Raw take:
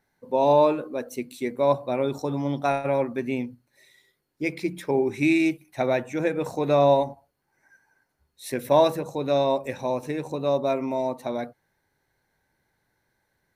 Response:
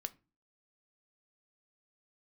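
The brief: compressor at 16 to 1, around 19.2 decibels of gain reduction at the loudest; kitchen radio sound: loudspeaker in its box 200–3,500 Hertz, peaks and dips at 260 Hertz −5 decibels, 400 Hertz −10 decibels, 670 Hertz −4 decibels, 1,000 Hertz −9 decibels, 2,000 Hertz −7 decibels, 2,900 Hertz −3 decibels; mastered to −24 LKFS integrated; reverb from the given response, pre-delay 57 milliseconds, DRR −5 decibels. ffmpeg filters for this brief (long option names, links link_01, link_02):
-filter_complex "[0:a]acompressor=threshold=-33dB:ratio=16,asplit=2[link_01][link_02];[1:a]atrim=start_sample=2205,adelay=57[link_03];[link_02][link_03]afir=irnorm=-1:irlink=0,volume=7dB[link_04];[link_01][link_04]amix=inputs=2:normalize=0,highpass=200,equalizer=frequency=260:width_type=q:width=4:gain=-5,equalizer=frequency=400:width_type=q:width=4:gain=-10,equalizer=frequency=670:width_type=q:width=4:gain=-4,equalizer=frequency=1000:width_type=q:width=4:gain=-9,equalizer=frequency=2000:width_type=q:width=4:gain=-7,equalizer=frequency=2900:width_type=q:width=4:gain=-3,lowpass=frequency=3500:width=0.5412,lowpass=frequency=3500:width=1.3066,volume=14dB"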